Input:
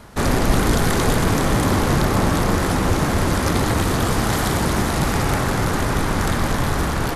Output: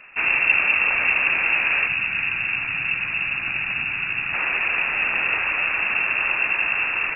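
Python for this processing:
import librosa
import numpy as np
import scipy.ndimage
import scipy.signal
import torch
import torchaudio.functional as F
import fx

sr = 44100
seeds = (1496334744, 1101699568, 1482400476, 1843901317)

y = fx.freq_invert(x, sr, carrier_hz=2700)
y = fx.graphic_eq(y, sr, hz=(125, 500, 1000, 2000), db=(9, -12, -5, -4), at=(1.87, 4.34))
y = y * librosa.db_to_amplitude(-3.5)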